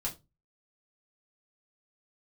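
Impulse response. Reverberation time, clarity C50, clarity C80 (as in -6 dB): 0.25 s, 14.5 dB, 22.5 dB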